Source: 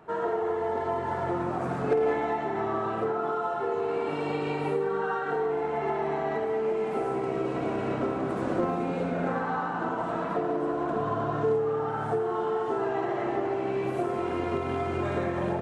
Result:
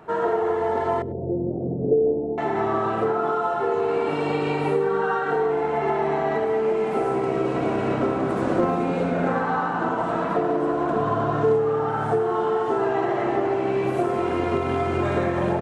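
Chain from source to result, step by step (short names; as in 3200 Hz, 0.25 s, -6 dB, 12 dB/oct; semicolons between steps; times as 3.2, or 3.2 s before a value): 1.02–2.38 steep low-pass 540 Hz 36 dB/oct; echo 0.101 s -24 dB; gain +6 dB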